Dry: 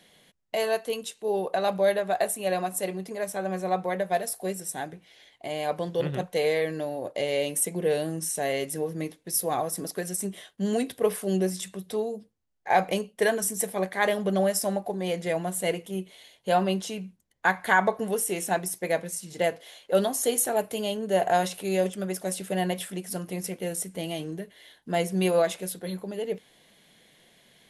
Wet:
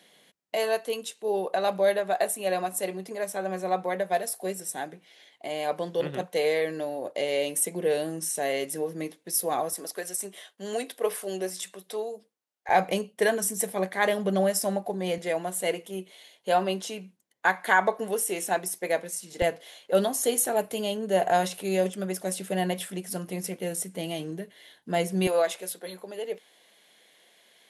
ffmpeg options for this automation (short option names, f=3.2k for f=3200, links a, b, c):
-af "asetnsamples=n=441:p=0,asendcmd='9.73 highpass f 450;12.69 highpass f 110;15.18 highpass f 260;19.42 highpass f 110;25.27 highpass f 410',highpass=210"